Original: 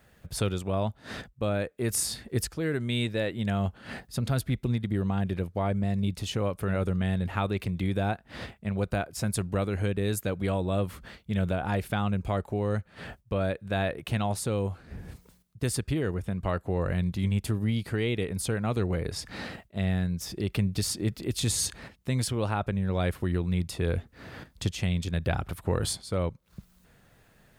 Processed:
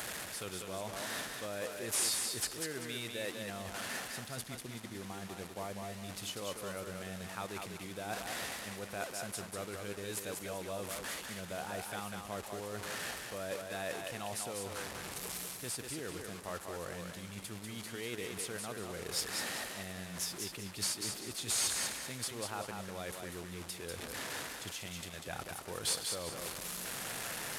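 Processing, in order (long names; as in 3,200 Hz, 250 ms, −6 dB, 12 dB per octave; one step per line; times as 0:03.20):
linear delta modulator 64 kbit/s, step −34 dBFS
high-shelf EQ 3,300 Hz −10.5 dB
reversed playback
downward compressor 6 to 1, threshold −35 dBFS, peak gain reduction 13 dB
reversed playback
RIAA equalisation recording
on a send: feedback echo with a high-pass in the loop 194 ms, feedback 33%, high-pass 190 Hz, level −4.5 dB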